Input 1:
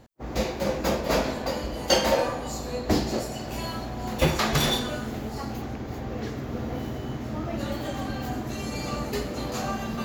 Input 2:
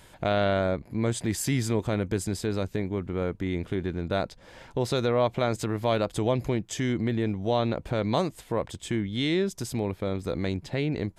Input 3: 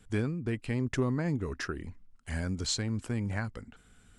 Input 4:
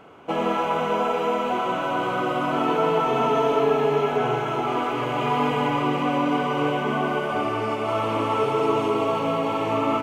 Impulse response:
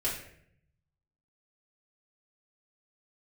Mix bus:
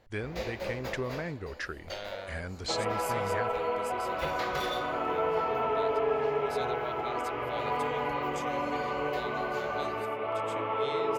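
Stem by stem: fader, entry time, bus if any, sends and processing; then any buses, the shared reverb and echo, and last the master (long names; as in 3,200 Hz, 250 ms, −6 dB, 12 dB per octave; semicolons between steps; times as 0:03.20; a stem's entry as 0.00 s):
0:00.65 −11 dB → 0:01.41 −23 dB → 0:03.81 −23 dB → 0:04.13 −15.5 dB, 0.00 s, no send, no processing
−7.5 dB, 1.65 s, no send, first-order pre-emphasis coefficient 0.8
−4.0 dB, 0.00 s, no send, noise gate with hold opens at −47 dBFS
−10.0 dB, 2.40 s, no send, low-pass filter 2,300 Hz 12 dB per octave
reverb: not used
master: octave-band graphic EQ 125/250/500/2,000/4,000/8,000 Hz −3/−7/+5/+6/+3/−5 dB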